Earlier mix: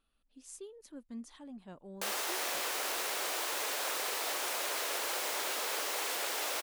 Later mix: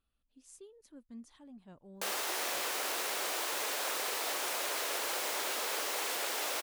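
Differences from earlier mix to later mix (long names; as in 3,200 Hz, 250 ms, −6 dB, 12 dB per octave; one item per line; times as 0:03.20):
speech −6.5 dB
master: add parametric band 84 Hz +13 dB 1.3 octaves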